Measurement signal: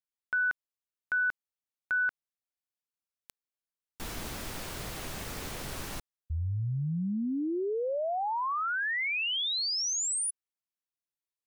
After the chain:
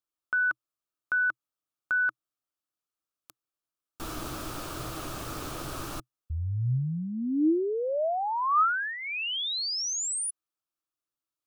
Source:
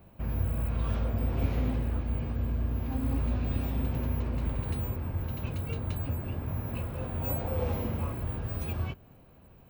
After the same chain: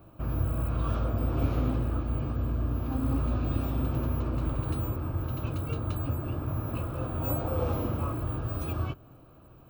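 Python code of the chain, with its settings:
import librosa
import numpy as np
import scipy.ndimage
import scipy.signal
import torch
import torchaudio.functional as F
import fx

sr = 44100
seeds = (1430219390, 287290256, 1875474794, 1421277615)

y = fx.graphic_eq_31(x, sr, hz=(125, 200, 315, 630, 1250, 2000), db=(6, -4, 10, 4, 11, -8))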